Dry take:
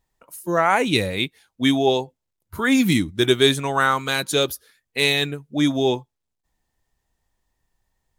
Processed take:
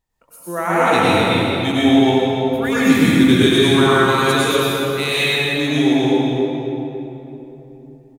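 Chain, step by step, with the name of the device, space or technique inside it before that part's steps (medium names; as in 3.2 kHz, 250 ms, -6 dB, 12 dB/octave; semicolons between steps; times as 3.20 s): cave (delay 282 ms -10.5 dB; reverberation RT60 3.4 s, pre-delay 88 ms, DRR -9.5 dB); trim -5 dB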